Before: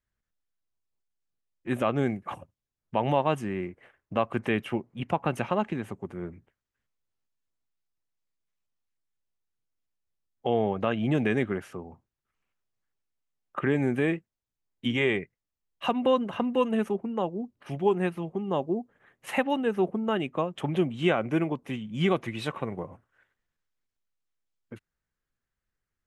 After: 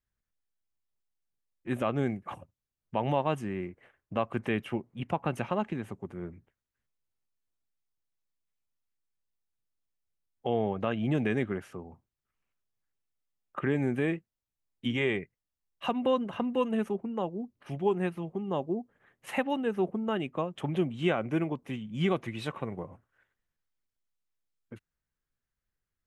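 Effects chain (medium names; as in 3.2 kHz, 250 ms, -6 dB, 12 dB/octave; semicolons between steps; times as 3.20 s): bass shelf 200 Hz +3 dB; trim -4 dB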